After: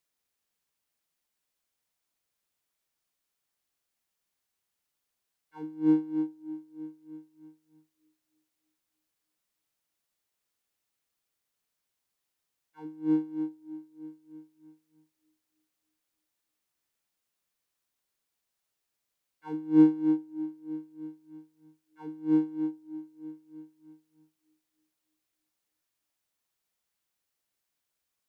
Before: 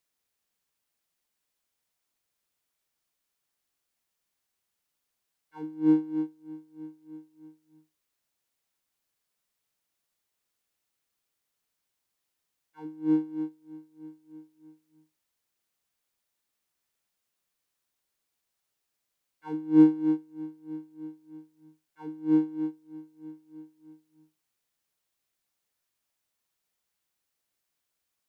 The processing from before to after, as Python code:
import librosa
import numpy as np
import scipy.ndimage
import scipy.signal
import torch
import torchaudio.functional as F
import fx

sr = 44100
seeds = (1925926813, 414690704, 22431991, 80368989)

y = fx.echo_bbd(x, sr, ms=308, stages=2048, feedback_pct=50, wet_db=-21)
y = F.gain(torch.from_numpy(y), -1.5).numpy()